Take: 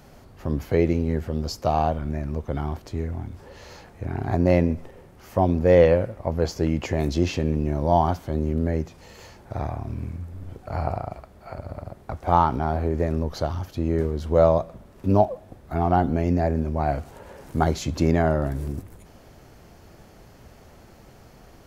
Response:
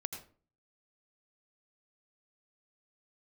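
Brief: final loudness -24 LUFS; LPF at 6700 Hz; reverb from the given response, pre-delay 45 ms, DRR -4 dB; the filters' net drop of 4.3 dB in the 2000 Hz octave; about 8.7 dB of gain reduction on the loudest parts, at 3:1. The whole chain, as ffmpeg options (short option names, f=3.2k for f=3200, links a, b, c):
-filter_complex "[0:a]lowpass=6.7k,equalizer=f=2k:t=o:g=-5.5,acompressor=threshold=-23dB:ratio=3,asplit=2[a][b];[1:a]atrim=start_sample=2205,adelay=45[c];[b][c]afir=irnorm=-1:irlink=0,volume=4.5dB[d];[a][d]amix=inputs=2:normalize=0"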